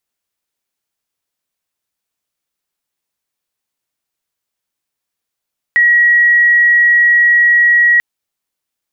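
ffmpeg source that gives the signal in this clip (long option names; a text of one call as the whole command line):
ffmpeg -f lavfi -i "sine=frequency=1910:duration=2.24:sample_rate=44100,volume=12.06dB" out.wav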